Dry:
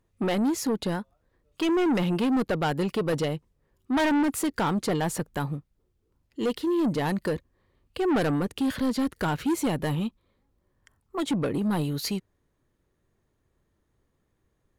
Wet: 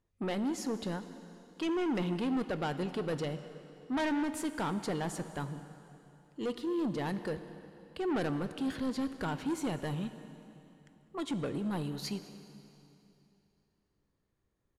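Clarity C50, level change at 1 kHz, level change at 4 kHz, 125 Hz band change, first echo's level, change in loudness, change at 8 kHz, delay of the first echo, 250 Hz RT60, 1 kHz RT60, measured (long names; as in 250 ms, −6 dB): 11.0 dB, −8.0 dB, −8.0 dB, −8.0 dB, −23.5 dB, −8.0 dB, −9.5 dB, 200 ms, 3.0 s, 2.9 s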